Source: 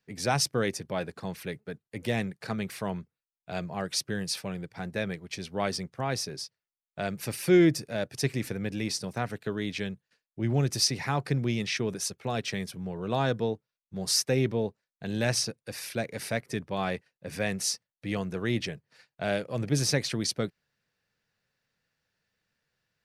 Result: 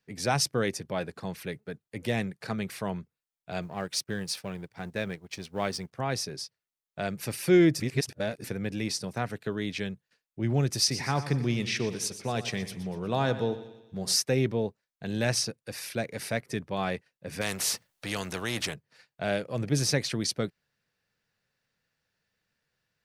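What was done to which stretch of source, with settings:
3.62–5.93 G.711 law mismatch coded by A
7.8–8.44 reverse
10.79–14.16 split-band echo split 2500 Hz, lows 92 ms, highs 0.12 s, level -13 dB
17.41–18.74 spectral compressor 2:1

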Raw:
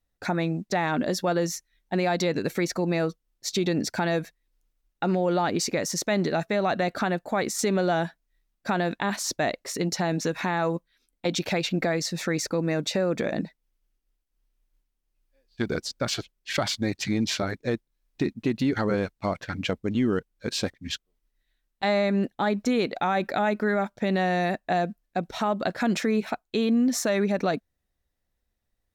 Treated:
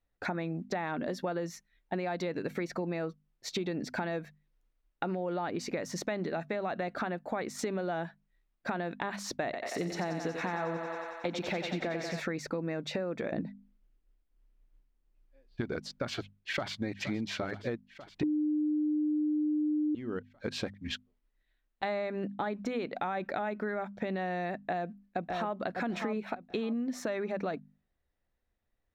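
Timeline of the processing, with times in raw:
9.44–12.2 thinning echo 91 ms, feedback 77%, high-pass 350 Hz, level -6 dB
13.32–15.61 low shelf 410 Hz +8.5 dB
16.12–16.73 echo throw 0.47 s, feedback 70%, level -17 dB
18.23–19.95 bleep 302 Hz -7 dBFS
24.63–25.56 echo throw 0.6 s, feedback 25%, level -7 dB
whole clip: tone controls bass -2 dB, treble -13 dB; notches 50/100/150/200/250 Hz; compressor 6:1, threshold -31 dBFS

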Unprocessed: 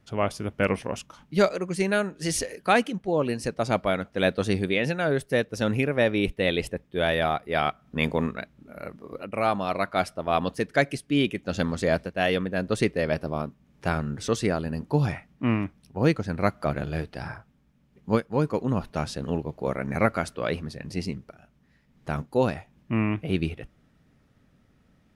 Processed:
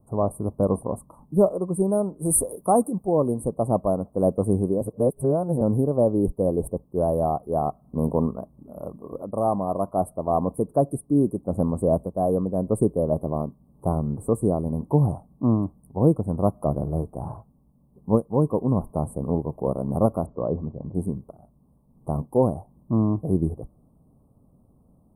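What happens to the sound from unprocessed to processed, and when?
2.25–3.28 high shelf 2100 Hz +9 dB
4.81–5.61 reverse
20.26–20.95 Gaussian blur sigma 3.9 samples
whole clip: dynamic EQ 1100 Hz, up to -3 dB, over -34 dBFS, Q 1.1; Chebyshev band-stop 1100–8700 Hz, order 5; bell 2000 Hz -2.5 dB 2 oct; gain +4.5 dB

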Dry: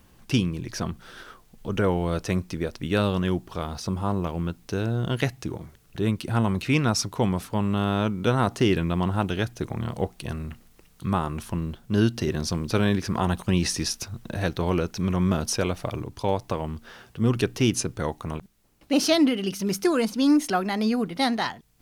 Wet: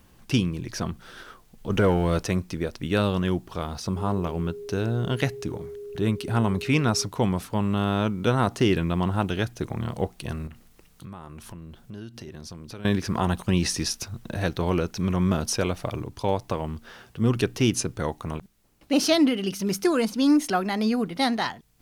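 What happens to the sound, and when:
1.7–2.27 sample leveller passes 1
3.96–7.06 whine 410 Hz -35 dBFS
10.47–12.85 compressor 4:1, threshold -39 dBFS

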